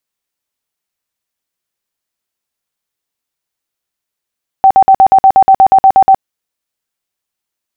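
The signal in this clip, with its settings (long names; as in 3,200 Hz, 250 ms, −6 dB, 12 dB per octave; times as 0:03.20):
tone bursts 772 Hz, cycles 51, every 0.12 s, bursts 13, −1.5 dBFS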